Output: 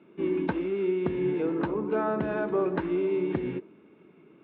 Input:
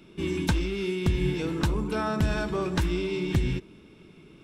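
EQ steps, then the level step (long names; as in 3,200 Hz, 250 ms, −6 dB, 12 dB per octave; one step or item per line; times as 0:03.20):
dynamic equaliser 450 Hz, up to +6 dB, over −40 dBFS, Q 0.82
band-pass filter 250–2,300 Hz
high-frequency loss of the air 370 metres
0.0 dB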